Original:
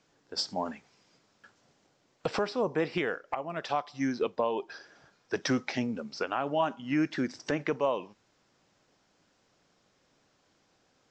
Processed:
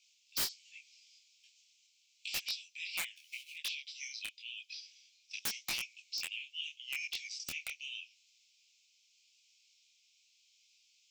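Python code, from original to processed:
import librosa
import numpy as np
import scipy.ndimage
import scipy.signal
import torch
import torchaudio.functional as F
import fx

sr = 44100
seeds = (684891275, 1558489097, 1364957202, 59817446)

y = fx.law_mismatch(x, sr, coded='mu', at=(3.16, 3.56))
y = scipy.signal.sosfilt(scipy.signal.butter(16, 2300.0, 'highpass', fs=sr, output='sos'), y)
y = (np.mod(10.0 ** (31.5 / 20.0) * y + 1.0, 2.0) - 1.0) / 10.0 ** (31.5 / 20.0)
y = fx.detune_double(y, sr, cents=29)
y = F.gain(torch.from_numpy(y), 9.0).numpy()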